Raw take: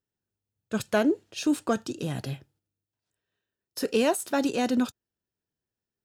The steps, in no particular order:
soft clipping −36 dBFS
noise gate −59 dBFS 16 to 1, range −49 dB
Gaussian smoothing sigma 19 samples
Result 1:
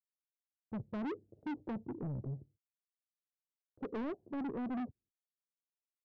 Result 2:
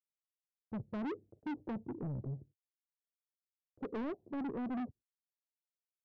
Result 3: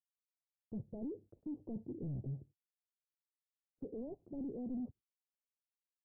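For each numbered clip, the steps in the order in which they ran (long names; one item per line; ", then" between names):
Gaussian smoothing, then noise gate, then soft clipping
Gaussian smoothing, then soft clipping, then noise gate
soft clipping, then Gaussian smoothing, then noise gate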